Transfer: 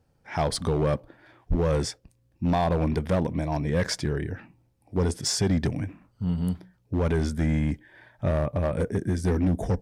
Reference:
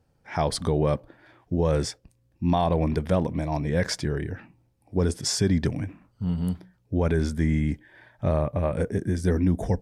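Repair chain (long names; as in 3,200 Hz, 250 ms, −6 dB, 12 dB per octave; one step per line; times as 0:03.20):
clipped peaks rebuilt −18 dBFS
0:01.49–0:01.61: high-pass filter 140 Hz 24 dB per octave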